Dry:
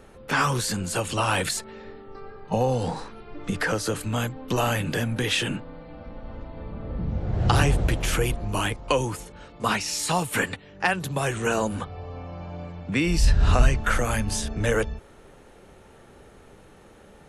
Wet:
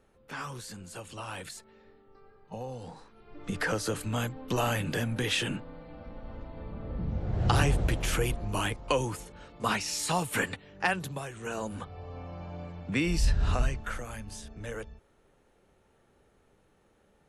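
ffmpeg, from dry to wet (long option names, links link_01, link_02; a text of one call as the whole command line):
ffmpeg -i in.wav -af "volume=7dB,afade=type=in:start_time=3.12:duration=0.51:silence=0.266073,afade=type=out:start_time=10.96:duration=0.33:silence=0.266073,afade=type=in:start_time=11.29:duration=0.93:silence=0.266073,afade=type=out:start_time=12.98:duration=1.07:silence=0.281838" out.wav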